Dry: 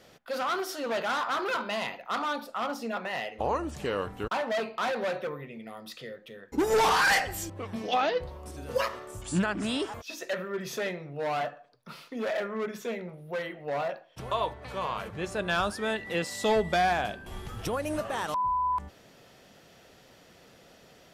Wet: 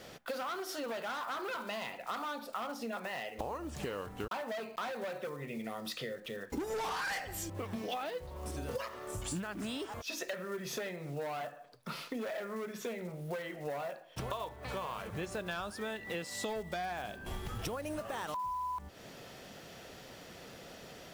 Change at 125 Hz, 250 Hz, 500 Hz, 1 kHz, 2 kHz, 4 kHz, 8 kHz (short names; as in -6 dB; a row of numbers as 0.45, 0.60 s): -5.0, -7.0, -8.5, -10.0, -10.0, -8.0, -5.0 dB